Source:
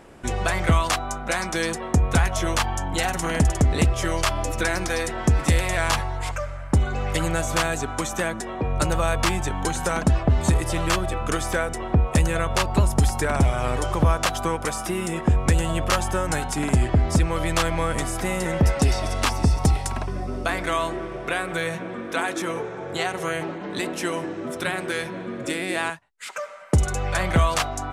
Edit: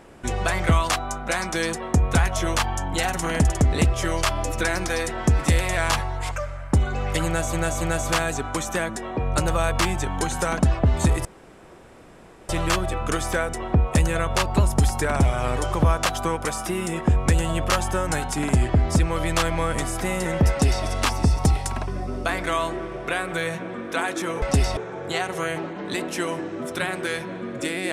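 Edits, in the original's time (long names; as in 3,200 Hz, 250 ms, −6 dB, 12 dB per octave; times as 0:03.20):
0:07.25–0:07.53: repeat, 3 plays
0:10.69: splice in room tone 1.24 s
0:18.70–0:19.05: duplicate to 0:22.62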